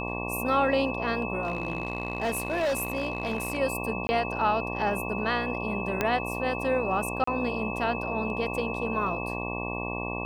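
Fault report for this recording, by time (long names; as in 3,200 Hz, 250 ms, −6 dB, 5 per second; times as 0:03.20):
mains buzz 60 Hz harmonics 19 −34 dBFS
whistle 2,600 Hz −35 dBFS
0:01.43–0:03.59: clipping −23.5 dBFS
0:04.07–0:04.09: drop-out 20 ms
0:06.01: click −11 dBFS
0:07.24–0:07.27: drop-out 34 ms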